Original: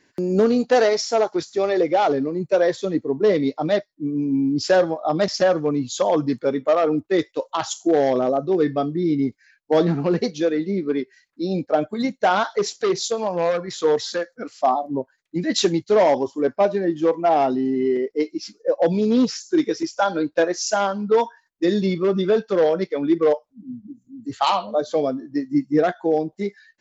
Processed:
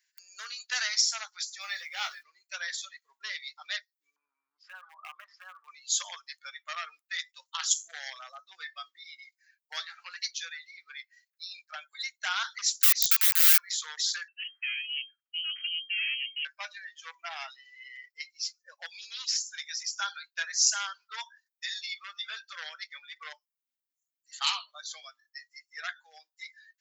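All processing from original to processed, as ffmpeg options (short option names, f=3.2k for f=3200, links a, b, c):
-filter_complex "[0:a]asettb=1/sr,asplit=3[a][b][c];[a]atrim=end=1.614[d];[b]atrim=start=1.61:end=2.23,asetpts=PTS-STARTPTS,afade=t=in:d=0.004:c=qsin,afade=t=out:st=0.616:d=0.004:c=qsin,aeval=exprs='sgn(val(0))*max(abs(val(0))-0.00211,0)':c=same,asplit=2[e][f];[f]adelay=19,volume=-6.5dB[g];[e][g]amix=inputs=2:normalize=0,atrim=end_sample=27342[h];[c]atrim=start=2.226[i];[d][h]acrossfade=d=0.004:c1=hsin:c2=qsin[j];[j][i]acrossfade=d=0.004:c1=qsin:c2=hsin,asettb=1/sr,asplit=3[k][l][m];[k]atrim=end=4.164[n];[l]atrim=start=4.16:end=5.68,asetpts=PTS-STARTPTS,afade=t=in:d=0.004:c=qsin,afade=t=out:st=1.516:d=0.004:c=qsin,acompressor=threshold=-24dB:ratio=8:attack=3.2:release=140:knee=1:detection=peak,lowpass=f=1.1k:t=q:w=2.9,asoftclip=type=hard:threshold=-19.5dB[o];[m]atrim=start=5.676[p];[n][o]acrossfade=d=0.004:c1=hsin:c2=qsin[q];[q][p]acrossfade=d=0.004:c1=qsin:c2=hsin,asettb=1/sr,asplit=3[r][s][t];[r]atrim=end=12.724[u];[s]atrim=start=12.72:end=13.63,asetpts=PTS-STARTPTS,afade=t=in:d=0.004:c=qsin,afade=t=out:st=0.906:d=0.004:c=qsin,acrossover=split=4700[v][w];[w]acompressor=threshold=-35dB:ratio=4:attack=1:release=60[x];[v][x]amix=inputs=2:normalize=0,lowshelf=f=230:g=-7.5,aeval=exprs='(mod(10*val(0)+1,2)-1)/10':c=same[y];[t]atrim=start=13.626[z];[u][y]acrossfade=d=0.004:c1=hsin:c2=qsin[aa];[aa][z]acrossfade=d=0.004:c1=qsin:c2=hsin,asettb=1/sr,asplit=3[ab][ac][ad];[ab]atrim=end=14.284[ae];[ac]atrim=start=14.28:end=16.45,asetpts=PTS-STARTPTS,afade=t=in:d=0.004:c=qsin,afade=t=out:st=2.166:d=0.004:c=qsin,acompressor=threshold=-31dB:ratio=2.5:attack=3.2:release=140:knee=1:detection=peak,aeval=exprs='clip(val(0),-1,0.0133)':c=same,lowpass=f=2.7k:t=q:w=0.5098,lowpass=f=2.7k:t=q:w=0.6013,lowpass=f=2.7k:t=q:w=0.9,lowpass=f=2.7k:t=q:w=2.563,afreqshift=-3200[af];[ad]atrim=start=16.446[ag];[ae][af]acrossfade=d=0.004:c1=hsin:c2=qsin[ah];[ah][ag]acrossfade=d=0.004:c1=qsin:c2=hsin,highpass=f=1.5k:w=0.5412,highpass=f=1.5k:w=1.3066,aemphasis=mode=production:type=bsi,afftdn=nr=12:nf=-43,volume=-3.5dB"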